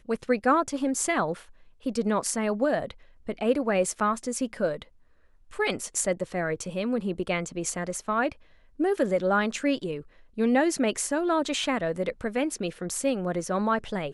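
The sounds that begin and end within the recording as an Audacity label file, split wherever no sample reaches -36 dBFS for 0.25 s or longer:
1.860000	2.910000	sound
3.270000	4.820000	sound
5.530000	8.320000	sound
8.800000	10.010000	sound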